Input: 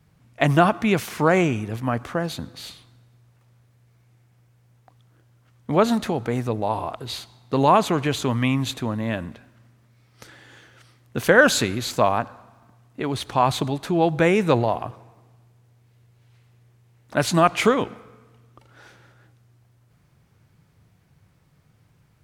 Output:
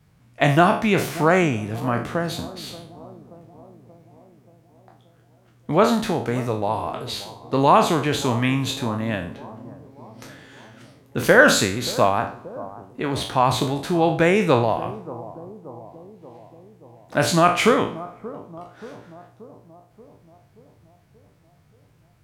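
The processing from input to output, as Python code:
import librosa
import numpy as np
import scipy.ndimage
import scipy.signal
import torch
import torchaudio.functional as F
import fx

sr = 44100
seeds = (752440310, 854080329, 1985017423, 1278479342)

y = fx.spec_trails(x, sr, decay_s=0.43)
y = fx.echo_bbd(y, sr, ms=580, stages=4096, feedback_pct=59, wet_db=-17.0)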